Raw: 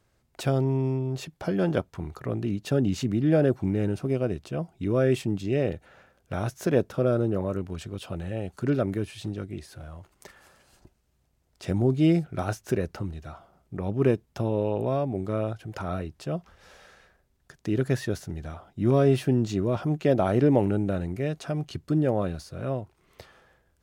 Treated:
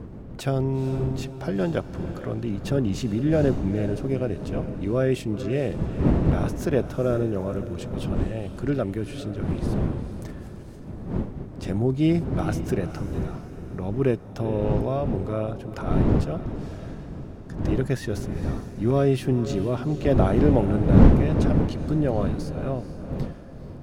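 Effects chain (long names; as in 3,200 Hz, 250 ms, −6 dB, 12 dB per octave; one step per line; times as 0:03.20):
wind on the microphone 210 Hz −27 dBFS
feedback delay with all-pass diffusion 457 ms, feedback 46%, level −11.5 dB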